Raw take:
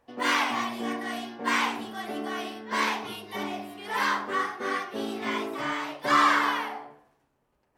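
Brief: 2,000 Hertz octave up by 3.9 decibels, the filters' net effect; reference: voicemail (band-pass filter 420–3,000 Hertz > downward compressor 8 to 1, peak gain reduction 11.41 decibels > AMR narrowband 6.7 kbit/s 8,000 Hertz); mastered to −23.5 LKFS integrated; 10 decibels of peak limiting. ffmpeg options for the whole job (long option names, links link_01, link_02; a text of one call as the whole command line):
ffmpeg -i in.wav -af "equalizer=frequency=2000:width_type=o:gain=5.5,alimiter=limit=-18.5dB:level=0:latency=1,highpass=420,lowpass=3000,acompressor=threshold=-35dB:ratio=8,volume=18dB" -ar 8000 -c:a libopencore_amrnb -b:a 6700 out.amr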